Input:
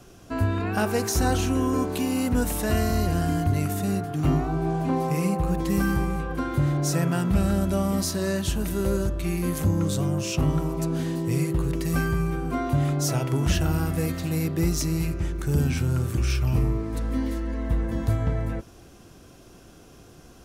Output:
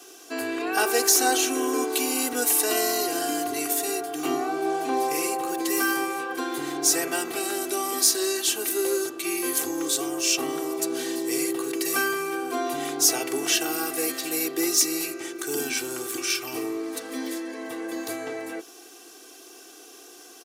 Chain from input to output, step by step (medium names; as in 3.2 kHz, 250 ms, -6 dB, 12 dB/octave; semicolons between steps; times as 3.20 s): high-pass 280 Hz 24 dB/octave; treble shelf 2.6 kHz +11.5 dB; comb 2.6 ms, depth 91%; trim -2 dB